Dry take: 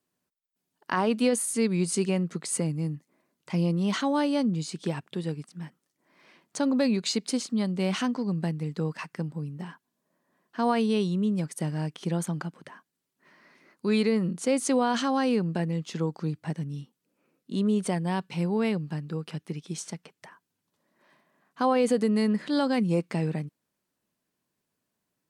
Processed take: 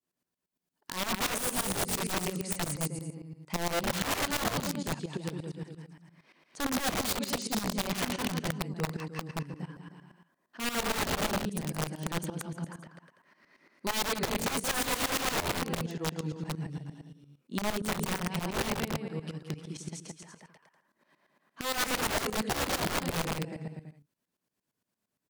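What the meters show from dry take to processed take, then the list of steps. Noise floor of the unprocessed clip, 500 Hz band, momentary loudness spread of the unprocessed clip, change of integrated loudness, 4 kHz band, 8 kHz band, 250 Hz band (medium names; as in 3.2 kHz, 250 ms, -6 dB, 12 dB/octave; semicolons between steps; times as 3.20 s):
-82 dBFS, -7.0 dB, 12 LU, -4.5 dB, +2.5 dB, +1.5 dB, -9.5 dB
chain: bouncing-ball echo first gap 170 ms, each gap 0.8×, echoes 5; integer overflow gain 20 dB; tremolo saw up 8.7 Hz, depth 85%; trim -2 dB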